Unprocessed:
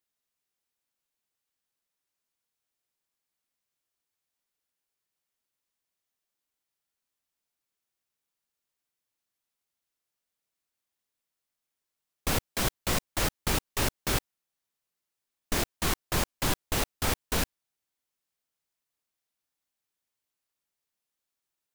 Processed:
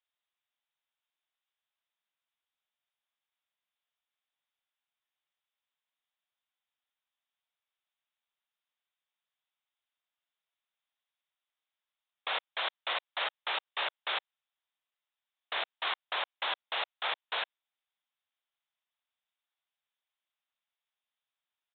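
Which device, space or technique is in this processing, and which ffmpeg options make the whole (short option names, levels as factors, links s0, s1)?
musical greeting card: -af "aresample=8000,aresample=44100,highpass=f=640:w=0.5412,highpass=f=640:w=1.3066,equalizer=f=3700:t=o:w=0.53:g=6,volume=0.891"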